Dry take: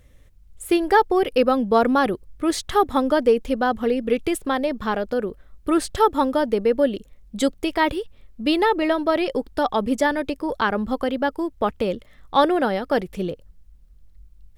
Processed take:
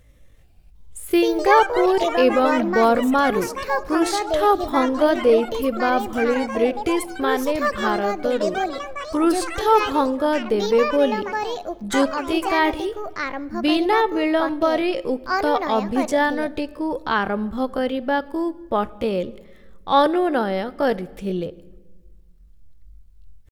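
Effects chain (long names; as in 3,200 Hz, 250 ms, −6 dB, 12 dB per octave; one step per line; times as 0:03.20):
tempo change 0.62×
delay with pitch and tempo change per echo 376 ms, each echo +5 semitones, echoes 3, each echo −6 dB
on a send: convolution reverb RT60 1.3 s, pre-delay 6 ms, DRR 17.5 dB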